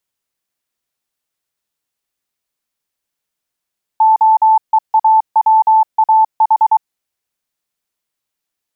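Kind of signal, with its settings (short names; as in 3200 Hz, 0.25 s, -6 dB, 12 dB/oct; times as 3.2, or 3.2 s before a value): Morse "OEAWAH" 23 wpm 878 Hz -6 dBFS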